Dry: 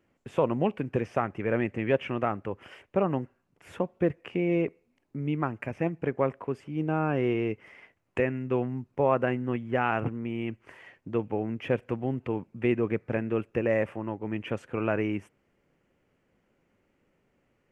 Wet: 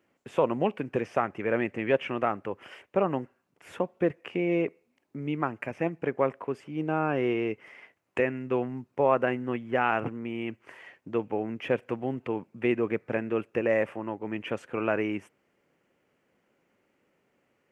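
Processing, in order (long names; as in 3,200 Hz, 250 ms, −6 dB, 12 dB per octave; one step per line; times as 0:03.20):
high-pass filter 280 Hz 6 dB per octave
level +2 dB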